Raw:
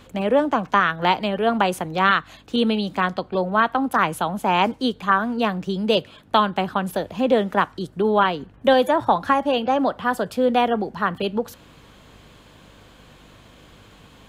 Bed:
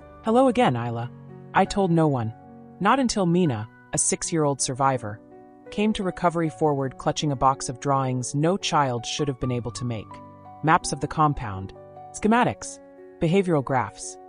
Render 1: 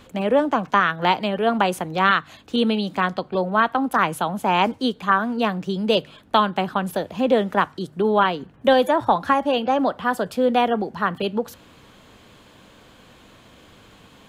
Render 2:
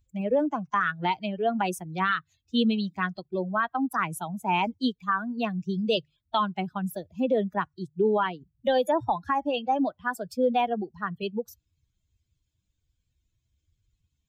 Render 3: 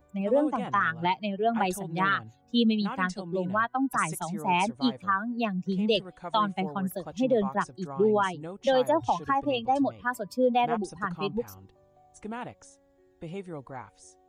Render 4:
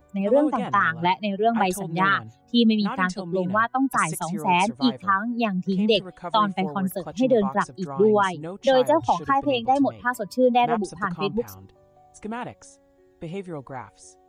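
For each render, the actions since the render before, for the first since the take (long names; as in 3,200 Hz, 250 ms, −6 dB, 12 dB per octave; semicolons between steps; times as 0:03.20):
hum removal 50 Hz, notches 3
spectral dynamics exaggerated over time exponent 2; brickwall limiter −15 dBFS, peak gain reduction 7.5 dB
mix in bed −17.5 dB
level +5 dB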